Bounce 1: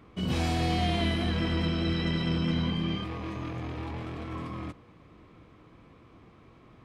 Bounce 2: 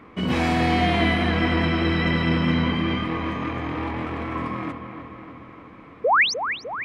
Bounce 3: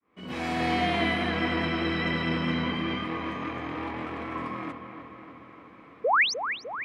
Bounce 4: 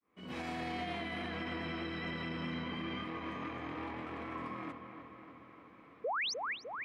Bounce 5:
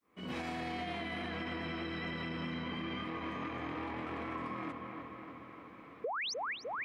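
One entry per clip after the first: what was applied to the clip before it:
painted sound rise, 6.04–6.34 s, 420–6500 Hz -27 dBFS; ten-band graphic EQ 250 Hz +8 dB, 500 Hz +5 dB, 1 kHz +8 dB, 2 kHz +11 dB; feedback echo behind a low-pass 302 ms, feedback 62%, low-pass 3.1 kHz, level -9 dB
fade-in on the opening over 0.68 s; bass shelf 130 Hz -11.5 dB; band-stop 910 Hz, Q 27; trim -4 dB
peak limiter -23.5 dBFS, peak gain reduction 9.5 dB; trim -7.5 dB
compression, threshold -41 dBFS, peak gain reduction 7.5 dB; trim +5 dB

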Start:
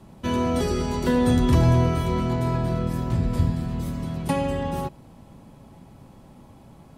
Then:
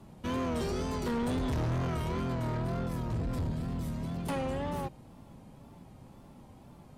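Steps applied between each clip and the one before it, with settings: wow and flutter 95 cents; saturation -24 dBFS, distortion -8 dB; trim -4.5 dB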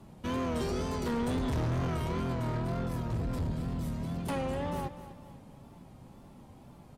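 feedback delay 249 ms, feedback 40%, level -13.5 dB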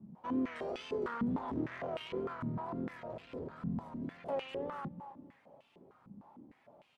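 step-sequenced band-pass 6.6 Hz 200–2800 Hz; trim +5.5 dB

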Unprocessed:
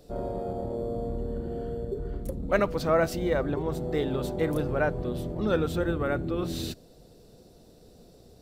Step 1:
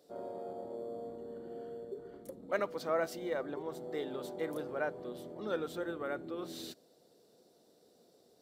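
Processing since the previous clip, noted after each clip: high-pass 300 Hz 12 dB/octave; band-stop 2.6 kHz, Q 13; trim -8.5 dB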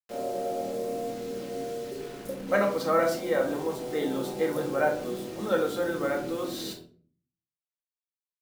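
bit crusher 9-bit; simulated room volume 410 m³, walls furnished, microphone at 2.1 m; trim +6.5 dB

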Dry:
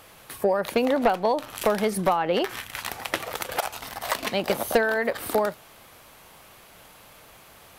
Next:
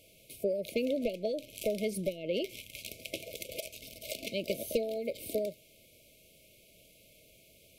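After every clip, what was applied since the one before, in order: FFT band-reject 670–2100 Hz; trim -8.5 dB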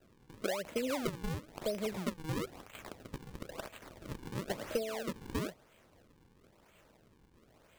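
decimation with a swept rate 39×, swing 160% 1 Hz; trim -3.5 dB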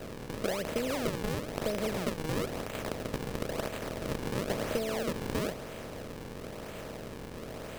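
spectral levelling over time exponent 0.4; trim -1.5 dB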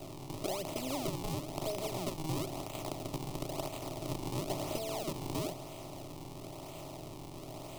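static phaser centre 320 Hz, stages 8

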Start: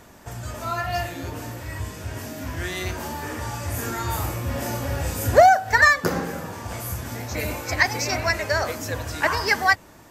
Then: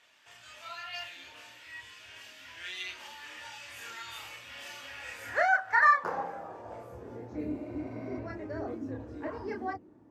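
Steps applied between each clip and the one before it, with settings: chorus voices 6, 0.24 Hz, delay 28 ms, depth 1.9 ms; band-pass sweep 2.9 kHz -> 280 Hz, 4.82–7.50 s; spectral replace 7.56–8.13 s, 470–12000 Hz both; trim +2 dB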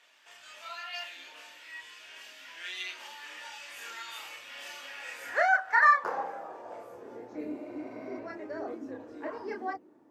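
high-pass 310 Hz 12 dB/octave; trim +1 dB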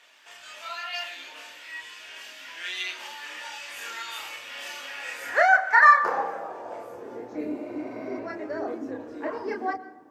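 reverberation RT60 0.90 s, pre-delay 102 ms, DRR 15.5 dB; trim +6 dB

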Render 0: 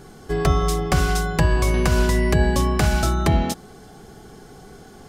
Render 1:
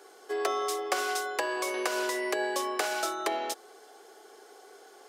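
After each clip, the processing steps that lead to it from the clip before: steep high-pass 370 Hz 36 dB/octave; trim -5.5 dB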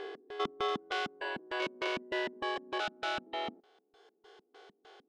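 spectrogram pixelated in time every 400 ms; LFO low-pass square 3.3 Hz 220–3300 Hz; reverb removal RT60 2 s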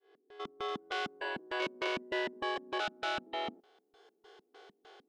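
fade-in on the opening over 1.14 s

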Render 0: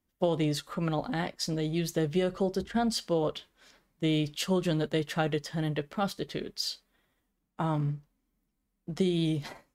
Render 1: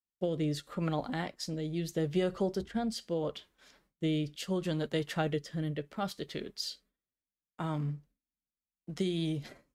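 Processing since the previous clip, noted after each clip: gate with hold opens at -57 dBFS; rotary cabinet horn 0.75 Hz; trim -2 dB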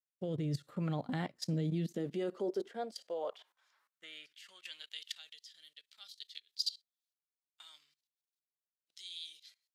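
level held to a coarse grid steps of 19 dB; high-pass sweep 120 Hz -> 3.9 kHz, 1.30–5.22 s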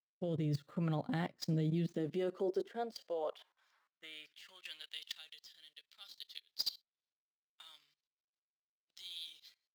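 median filter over 5 samples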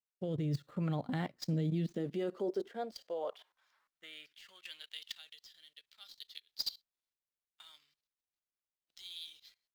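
bass shelf 64 Hz +8.5 dB

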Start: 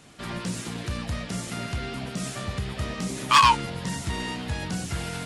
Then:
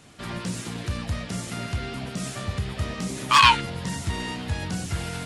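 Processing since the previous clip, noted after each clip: peaking EQ 93 Hz +5.5 dB 0.45 oct; time-frequency box 3.40–3.61 s, 1.3–4.5 kHz +7 dB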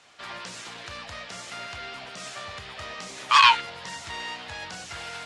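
three-band isolator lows -20 dB, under 540 Hz, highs -20 dB, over 7.4 kHz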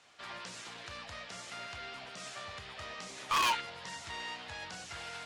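hard clipper -19.5 dBFS, distortion -5 dB; trim -6.5 dB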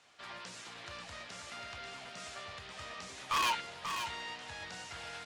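delay 537 ms -7.5 dB; trim -2 dB

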